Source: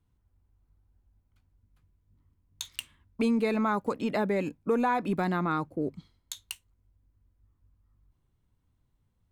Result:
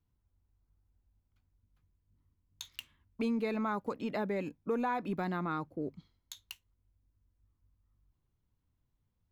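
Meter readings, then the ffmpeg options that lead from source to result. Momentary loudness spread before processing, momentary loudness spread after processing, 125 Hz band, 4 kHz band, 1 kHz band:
15 LU, 16 LU, -6.5 dB, -6.5 dB, -6.5 dB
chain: -af "equalizer=f=8.8k:w=3.8:g=-14,volume=-6.5dB"

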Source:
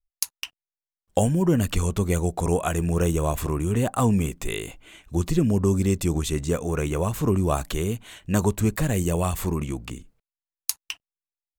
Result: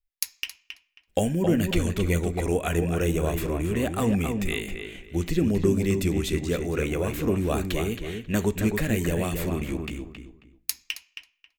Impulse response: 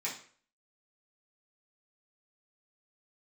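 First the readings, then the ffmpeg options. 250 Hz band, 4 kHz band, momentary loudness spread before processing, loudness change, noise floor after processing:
-1.0 dB, +1.0 dB, 11 LU, -2.0 dB, -74 dBFS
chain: -filter_complex "[0:a]equalizer=f=125:t=o:w=1:g=-7,equalizer=f=1k:t=o:w=1:g=-10,equalizer=f=2k:t=o:w=1:g=5,equalizer=f=8k:t=o:w=1:g=-7,asplit=2[a][b];[b]adelay=270,lowpass=f=2.7k:p=1,volume=-5.5dB,asplit=2[c][d];[d]adelay=270,lowpass=f=2.7k:p=1,volume=0.26,asplit=2[e][f];[f]adelay=270,lowpass=f=2.7k:p=1,volume=0.26[g];[a][c][e][g]amix=inputs=4:normalize=0,asplit=2[h][i];[1:a]atrim=start_sample=2205[j];[i][j]afir=irnorm=-1:irlink=0,volume=-15dB[k];[h][k]amix=inputs=2:normalize=0"

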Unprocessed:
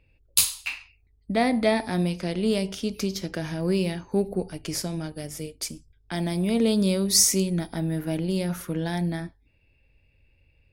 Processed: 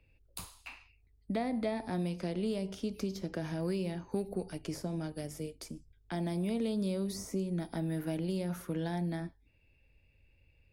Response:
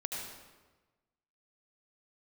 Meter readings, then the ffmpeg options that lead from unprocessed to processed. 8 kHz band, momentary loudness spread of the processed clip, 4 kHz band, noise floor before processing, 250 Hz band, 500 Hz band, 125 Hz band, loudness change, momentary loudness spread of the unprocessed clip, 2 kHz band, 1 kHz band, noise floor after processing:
-23.5 dB, 13 LU, -18.0 dB, -64 dBFS, -9.0 dB, -9.5 dB, -8.0 dB, -10.5 dB, 13 LU, -13.0 dB, -10.0 dB, -68 dBFS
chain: -filter_complex "[0:a]acrossover=split=140|1200[a][b][c];[a]acompressor=threshold=-45dB:ratio=4[d];[b]acompressor=threshold=-28dB:ratio=4[e];[c]acompressor=threshold=-45dB:ratio=4[f];[d][e][f]amix=inputs=3:normalize=0,volume=-4dB"

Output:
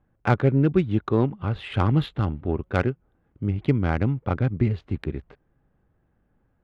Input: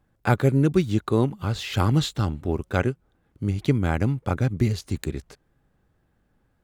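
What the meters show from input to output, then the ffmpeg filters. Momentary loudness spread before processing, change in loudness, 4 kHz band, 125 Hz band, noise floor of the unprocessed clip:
10 LU, 0.0 dB, -7.0 dB, 0.0 dB, -68 dBFS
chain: -af "highshelf=f=4.3k:t=q:w=1.5:g=-8.5,adynamicsmooth=sensitivity=1:basefreq=2.1k"

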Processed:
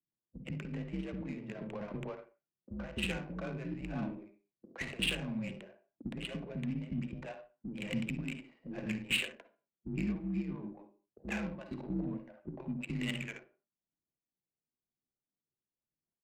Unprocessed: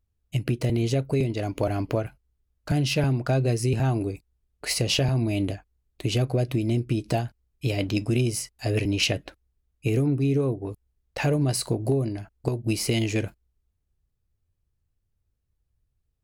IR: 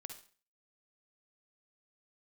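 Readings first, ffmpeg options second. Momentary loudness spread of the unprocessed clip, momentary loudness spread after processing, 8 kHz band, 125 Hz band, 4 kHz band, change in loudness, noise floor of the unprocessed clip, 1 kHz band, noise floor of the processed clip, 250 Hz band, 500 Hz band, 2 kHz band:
9 LU, 15 LU, -18.0 dB, -18.0 dB, -10.5 dB, -13.0 dB, -76 dBFS, -15.0 dB, under -85 dBFS, -10.5 dB, -17.5 dB, -6.0 dB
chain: -filter_complex "[0:a]bandreject=f=1.4k:w=8.4,acrossover=split=280|1100|2000[a][b][c][d];[b]acompressor=threshold=-41dB:ratio=6[e];[c]asoftclip=type=hard:threshold=-39dB[f];[a][e][f][d]amix=inputs=4:normalize=0,aphaser=in_gain=1:out_gain=1:delay=4.4:decay=0.34:speed=1:type=sinusoidal,highpass=f=250:t=q:w=0.5412,highpass=f=250:t=q:w=1.307,lowpass=f=3.5k:t=q:w=0.5176,lowpass=f=3.5k:t=q:w=0.7071,lowpass=f=3.5k:t=q:w=1.932,afreqshift=-85,acrossover=split=370[g][h];[h]adelay=120[i];[g][i]amix=inputs=2:normalize=0[j];[1:a]atrim=start_sample=2205,afade=t=out:st=0.31:d=0.01,atrim=end_sample=14112[k];[j][k]afir=irnorm=-1:irlink=0,adynamicsmooth=sensitivity=7:basefreq=810,volume=1dB"

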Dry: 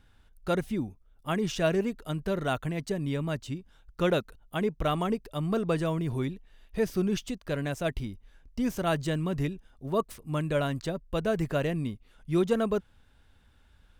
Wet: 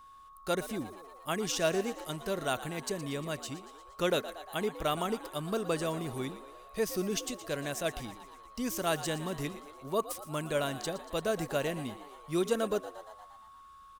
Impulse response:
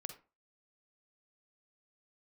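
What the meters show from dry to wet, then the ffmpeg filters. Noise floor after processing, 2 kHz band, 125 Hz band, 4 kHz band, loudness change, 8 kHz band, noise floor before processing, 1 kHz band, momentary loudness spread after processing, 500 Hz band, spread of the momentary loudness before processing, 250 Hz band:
-54 dBFS, -1.5 dB, -9.5 dB, +1.5 dB, -3.5 dB, +7.0 dB, -61 dBFS, -1.5 dB, 15 LU, -3.0 dB, 11 LU, -6.5 dB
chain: -filter_complex "[0:a]aeval=exprs='val(0)+0.00355*sin(2*PI*1100*n/s)':c=same,bass=f=250:g=-8,treble=f=4k:g=10,asplit=8[a][b][c][d][e][f][g][h];[b]adelay=117,afreqshift=77,volume=-14.5dB[i];[c]adelay=234,afreqshift=154,volume=-18.4dB[j];[d]adelay=351,afreqshift=231,volume=-22.3dB[k];[e]adelay=468,afreqshift=308,volume=-26.1dB[l];[f]adelay=585,afreqshift=385,volume=-30dB[m];[g]adelay=702,afreqshift=462,volume=-33.9dB[n];[h]adelay=819,afreqshift=539,volume=-37.8dB[o];[a][i][j][k][l][m][n][o]amix=inputs=8:normalize=0,volume=-2.5dB"

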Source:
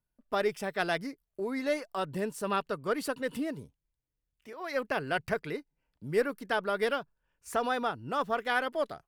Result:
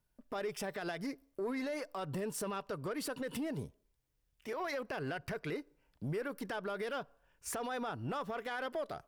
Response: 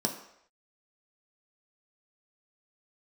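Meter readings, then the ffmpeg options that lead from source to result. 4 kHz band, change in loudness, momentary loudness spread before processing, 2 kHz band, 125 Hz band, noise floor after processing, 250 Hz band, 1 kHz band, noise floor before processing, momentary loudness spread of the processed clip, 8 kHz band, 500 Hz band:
-7.5 dB, -7.5 dB, 9 LU, -9.0 dB, -0.5 dB, -78 dBFS, -4.0 dB, -8.5 dB, under -85 dBFS, 6 LU, +1.0 dB, -7.5 dB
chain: -filter_complex "[0:a]acompressor=threshold=-34dB:ratio=5,alimiter=level_in=11dB:limit=-24dB:level=0:latency=1:release=50,volume=-11dB,asoftclip=type=tanh:threshold=-36.5dB,asplit=2[a][b];[b]highpass=330,lowpass=7.9k[c];[1:a]atrim=start_sample=2205,afade=t=out:st=0.38:d=0.01,atrim=end_sample=17199[d];[c][d]afir=irnorm=-1:irlink=0,volume=-25.5dB[e];[a][e]amix=inputs=2:normalize=0,volume=6dB"

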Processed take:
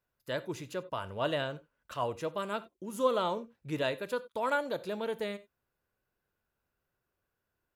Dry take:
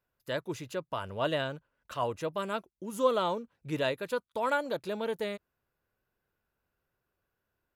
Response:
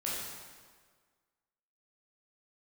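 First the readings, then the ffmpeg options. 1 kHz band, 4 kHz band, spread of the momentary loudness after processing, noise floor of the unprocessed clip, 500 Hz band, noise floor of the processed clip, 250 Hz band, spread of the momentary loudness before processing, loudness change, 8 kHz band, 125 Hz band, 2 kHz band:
-1.5 dB, -1.5 dB, 9 LU, -84 dBFS, -1.5 dB, -85 dBFS, -1.5 dB, 9 LU, -1.5 dB, -1.5 dB, -1.5 dB, -1.0 dB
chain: -filter_complex "[0:a]asplit=2[a][b];[1:a]atrim=start_sample=2205,atrim=end_sample=4410[c];[b][c]afir=irnorm=-1:irlink=0,volume=-15dB[d];[a][d]amix=inputs=2:normalize=0,volume=-2.5dB"

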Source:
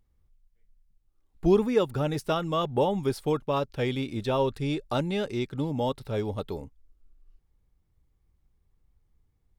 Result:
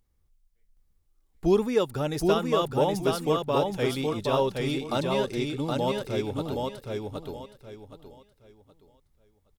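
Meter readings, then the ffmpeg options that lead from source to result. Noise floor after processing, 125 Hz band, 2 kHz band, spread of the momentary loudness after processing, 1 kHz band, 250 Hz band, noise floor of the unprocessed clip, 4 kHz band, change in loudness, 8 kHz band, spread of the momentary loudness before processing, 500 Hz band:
-69 dBFS, -1.0 dB, +2.5 dB, 13 LU, +2.0 dB, +0.5 dB, -72 dBFS, +3.5 dB, +1.0 dB, +6.5 dB, 8 LU, +2.0 dB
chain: -af "bass=f=250:g=-3,treble=f=4k:g=5,aecho=1:1:770|1540|2310|3080:0.708|0.198|0.0555|0.0155"

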